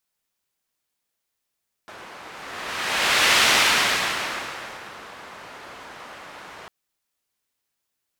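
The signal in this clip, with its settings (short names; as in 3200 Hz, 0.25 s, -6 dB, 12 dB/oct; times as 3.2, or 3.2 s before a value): whoosh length 4.80 s, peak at 1.53, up 1.30 s, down 1.76 s, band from 1200 Hz, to 2600 Hz, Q 0.81, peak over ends 24 dB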